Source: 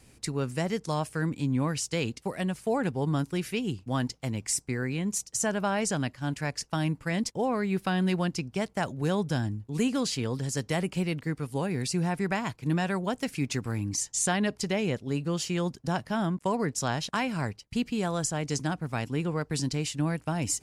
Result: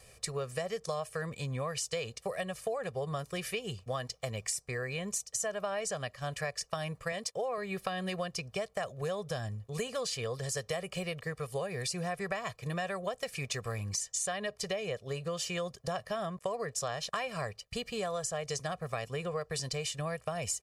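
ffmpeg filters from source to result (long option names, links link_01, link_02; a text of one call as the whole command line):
ffmpeg -i in.wav -filter_complex "[0:a]asettb=1/sr,asplit=3[link_01][link_02][link_03];[link_01]atrim=end=7.124[link_04];[link_02]atrim=start=7.12:end=7.58,asetpts=PTS-STARTPTS,afade=type=in:duration=0.004:curve=qsin,afade=type=out:start_time=0.456:duration=0.004:curve=qsin,highpass=frequency=220:poles=1[link_05];[link_03]atrim=start=7.576[link_06];[link_04][link_05]acrossfade=duration=0.004:curve1=hsin:curve2=qsin[link_07];[link_07][link_06]acrossfade=duration=0.004:curve1=qsin:curve2=hsin,lowshelf=frequency=360:width_type=q:width=1.5:gain=-6.5,aecho=1:1:1.7:0.81,acompressor=threshold=-32dB:ratio=6" out.wav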